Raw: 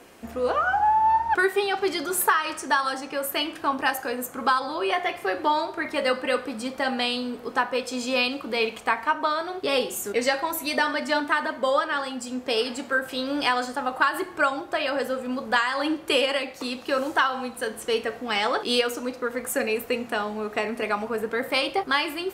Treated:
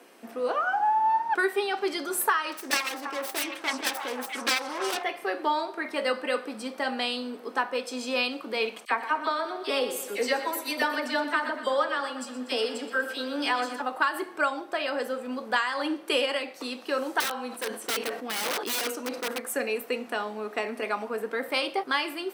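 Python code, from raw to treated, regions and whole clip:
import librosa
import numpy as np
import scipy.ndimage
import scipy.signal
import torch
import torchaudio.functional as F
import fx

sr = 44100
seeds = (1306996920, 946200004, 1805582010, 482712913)

y = fx.chain(x, sr, fx.self_delay(depth_ms=0.76),
    fx.echo_stepped(ms=326, hz=1000.0, octaves=1.4, feedback_pct=70, wet_db=-2.5), at=(2.52, 5.03))
y = fx.chain(y, sr, fx.dispersion(late='lows', ms=42.0, hz=1500.0),
    fx.echo_feedback(ms=121, feedback_pct=56, wet_db=-12.5), at=(8.85, 13.82))
y = fx.chain(y, sr, fx.overflow_wrap(gain_db=20.0),
    fx.sustainer(db_per_s=86.0), at=(17.2, 19.4))
y = scipy.signal.sosfilt(scipy.signal.butter(4, 220.0, 'highpass', fs=sr, output='sos'), y)
y = fx.notch(y, sr, hz=6900.0, q=12.0)
y = F.gain(torch.from_numpy(y), -3.5).numpy()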